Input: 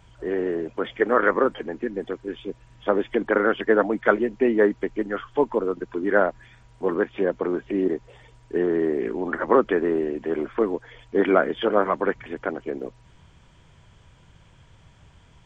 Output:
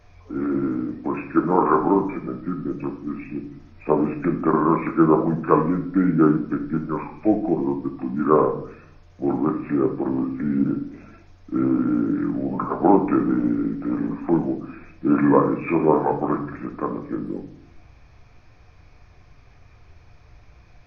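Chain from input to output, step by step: speed mistake 45 rpm record played at 33 rpm; simulated room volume 87 m³, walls mixed, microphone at 0.5 m

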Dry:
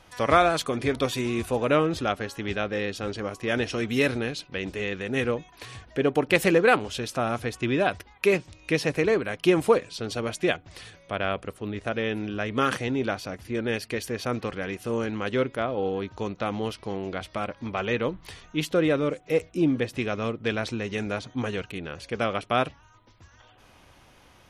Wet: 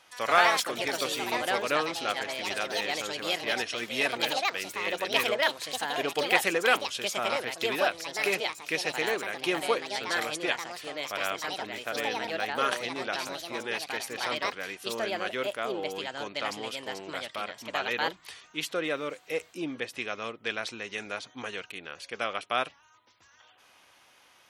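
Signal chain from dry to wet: ever faster or slower copies 121 ms, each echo +4 st, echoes 2; high-pass 1.2 kHz 6 dB/octave

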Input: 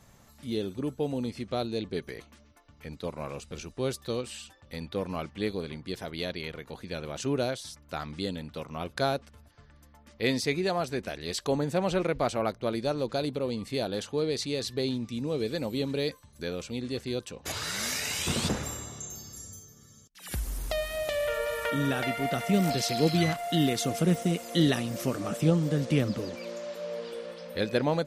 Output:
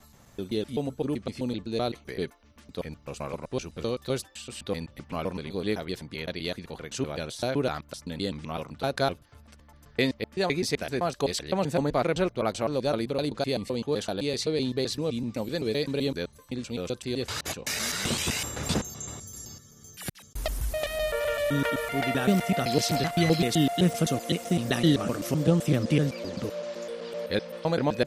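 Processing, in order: slices played last to first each 128 ms, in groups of 3; trim +2 dB

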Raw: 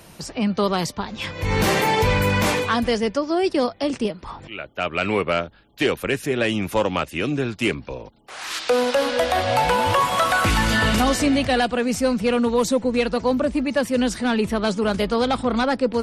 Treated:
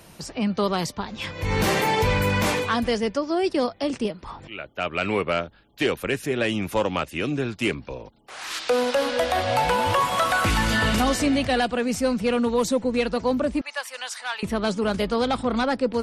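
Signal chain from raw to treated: 13.61–14.43 s: high-pass 820 Hz 24 dB/octave; trim -2.5 dB

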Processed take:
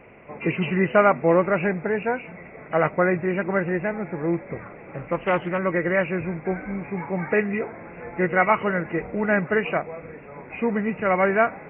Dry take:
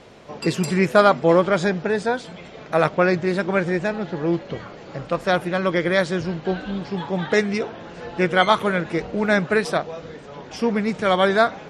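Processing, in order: knee-point frequency compression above 1.9 kHz 4:1; 4.65–5.59 s: loudspeaker Doppler distortion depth 0.22 ms; trim -2.5 dB

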